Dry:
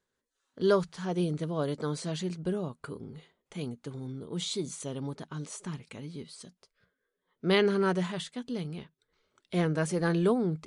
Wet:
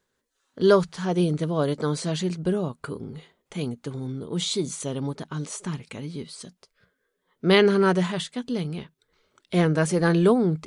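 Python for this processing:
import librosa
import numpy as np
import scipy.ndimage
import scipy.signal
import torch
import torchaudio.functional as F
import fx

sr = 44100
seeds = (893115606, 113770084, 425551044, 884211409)

y = fx.end_taper(x, sr, db_per_s=600.0)
y = y * 10.0 ** (7.0 / 20.0)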